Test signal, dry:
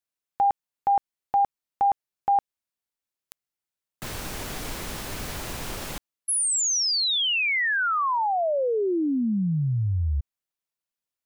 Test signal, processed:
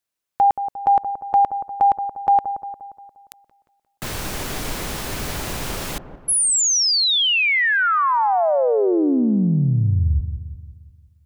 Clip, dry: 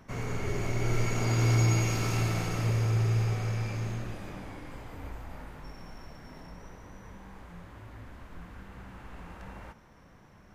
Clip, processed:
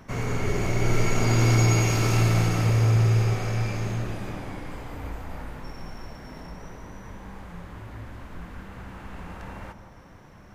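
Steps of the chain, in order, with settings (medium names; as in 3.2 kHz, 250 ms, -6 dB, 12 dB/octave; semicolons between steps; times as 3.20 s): feedback echo behind a low-pass 176 ms, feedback 51%, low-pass 1 kHz, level -9 dB; trim +6 dB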